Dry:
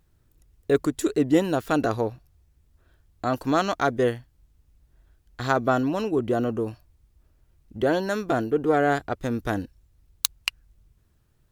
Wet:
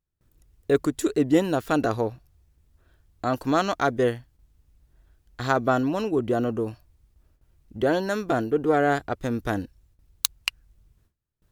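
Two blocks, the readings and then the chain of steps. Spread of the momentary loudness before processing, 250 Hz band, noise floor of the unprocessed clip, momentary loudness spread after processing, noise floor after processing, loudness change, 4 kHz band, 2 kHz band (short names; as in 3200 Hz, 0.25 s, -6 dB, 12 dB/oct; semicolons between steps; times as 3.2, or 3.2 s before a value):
10 LU, 0.0 dB, -65 dBFS, 10 LU, -69 dBFS, 0.0 dB, 0.0 dB, 0.0 dB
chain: gate with hold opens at -53 dBFS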